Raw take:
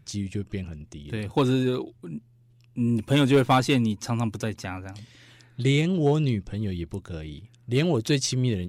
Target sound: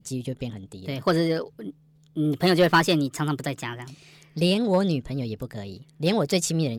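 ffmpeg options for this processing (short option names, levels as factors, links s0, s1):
-af "asetrate=56448,aresample=44100,adynamicequalizer=threshold=0.00891:dfrequency=1900:dqfactor=0.84:tfrequency=1900:tqfactor=0.84:attack=5:release=100:ratio=0.375:range=2:mode=boostabove:tftype=bell"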